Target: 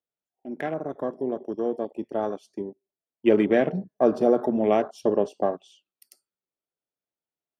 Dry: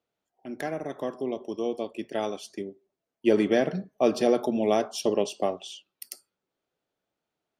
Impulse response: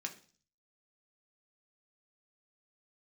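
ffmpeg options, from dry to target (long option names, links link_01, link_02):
-af "afwtdn=0.0141,volume=2.5dB"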